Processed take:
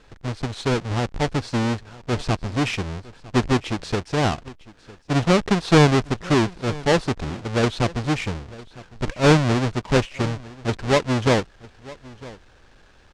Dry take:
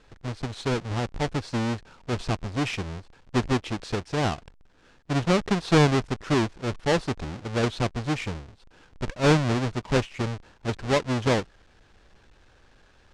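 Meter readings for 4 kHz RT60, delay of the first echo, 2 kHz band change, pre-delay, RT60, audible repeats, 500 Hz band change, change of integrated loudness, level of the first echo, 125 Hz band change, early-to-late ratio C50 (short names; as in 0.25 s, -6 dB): none, 0.954 s, +4.5 dB, none, none, 1, +4.5 dB, +4.5 dB, -20.5 dB, +4.5 dB, none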